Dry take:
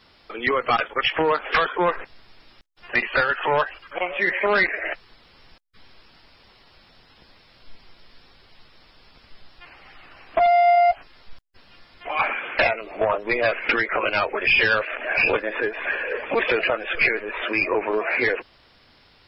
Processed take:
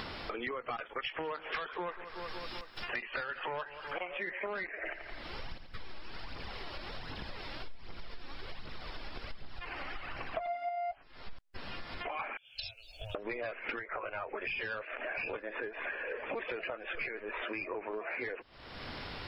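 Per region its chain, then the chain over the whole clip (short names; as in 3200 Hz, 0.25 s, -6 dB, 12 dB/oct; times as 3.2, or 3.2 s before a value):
0.85–4.18 high shelf 3200 Hz +11 dB + feedback echo 0.185 s, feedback 50%, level -19.5 dB
4.83–10.69 phaser 1.3 Hz, delay 3.7 ms, feedback 47% + feedback echo 85 ms, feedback 41%, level -12 dB
12.37–13.15 inverse Chebyshev band-stop 190–2100 Hz + tone controls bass -13 dB, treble +4 dB
13.79–14.27 LPF 1700 Hz + bell 260 Hz -12.5 dB 1 oct
whole clip: upward compressor, threshold -23 dBFS; high shelf 4500 Hz -11 dB; compressor 6:1, threshold -34 dBFS; gain -2.5 dB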